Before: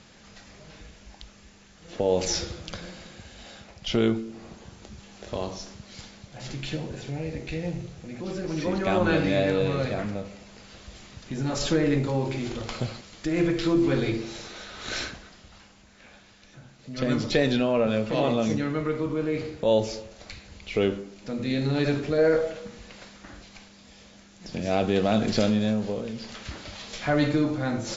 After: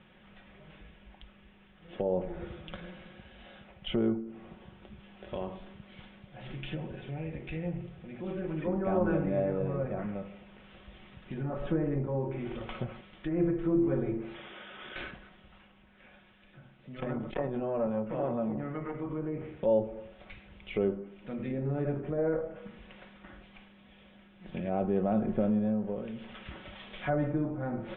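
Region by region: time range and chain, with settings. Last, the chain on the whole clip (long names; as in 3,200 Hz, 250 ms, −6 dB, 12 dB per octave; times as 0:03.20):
0:14.34–0:14.96: high-pass filter 160 Hz + downward compressor 10 to 1, threshold −35 dBFS + bad sample-rate conversion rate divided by 6×, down none, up filtered
0:16.95–0:19.11: low-pass filter 4,000 Hz + mains-hum notches 50/100/150/200/250/300/350/400/450 Hz + saturating transformer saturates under 720 Hz
whole clip: treble cut that deepens with the level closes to 1,000 Hz, closed at −23 dBFS; Butterworth low-pass 3,500 Hz 96 dB per octave; comb filter 5.4 ms, depth 39%; level −6 dB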